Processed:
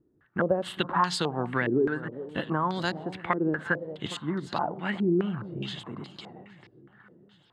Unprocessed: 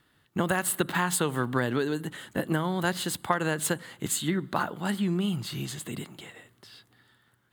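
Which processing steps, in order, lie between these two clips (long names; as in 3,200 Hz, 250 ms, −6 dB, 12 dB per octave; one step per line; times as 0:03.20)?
delay that swaps between a low-pass and a high-pass 408 ms, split 830 Hz, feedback 58%, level −13 dB
low-pass on a step sequencer 4.8 Hz 370–4,700 Hz
level −3 dB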